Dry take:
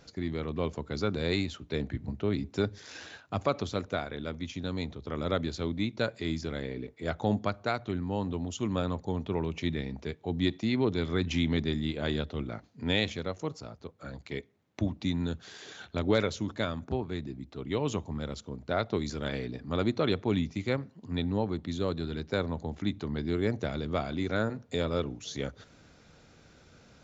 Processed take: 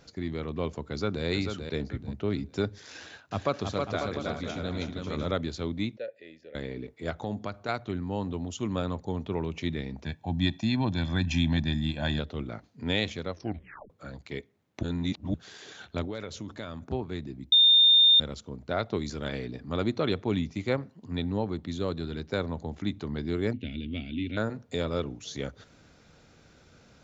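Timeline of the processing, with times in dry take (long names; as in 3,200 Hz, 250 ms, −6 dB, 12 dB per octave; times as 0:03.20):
0:00.84–0:01.25: delay throw 440 ms, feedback 25%, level −6 dB
0:02.99–0:05.31: bouncing-ball delay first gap 320 ms, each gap 0.7×, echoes 5
0:05.97–0:06.55: formant filter e
0:07.10–0:07.69: downward compressor 2 to 1, threshold −32 dBFS
0:10.04–0:12.19: comb filter 1.2 ms, depth 86%
0:13.31: tape stop 0.59 s
0:14.83–0:15.34: reverse
0:16.05–0:16.89: downward compressor 3 to 1, threshold −35 dBFS
0:17.52–0:18.20: beep over 3,630 Hz −15 dBFS
0:20.53–0:21.01: dynamic equaliser 720 Hz, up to +4 dB, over −40 dBFS, Q 0.71
0:23.53–0:24.37: drawn EQ curve 100 Hz 0 dB, 170 Hz −8 dB, 250 Hz +6 dB, 390 Hz −11 dB, 1,200 Hz −29 dB, 1,800 Hz −10 dB, 2,800 Hz +10 dB, 5,900 Hz −23 dB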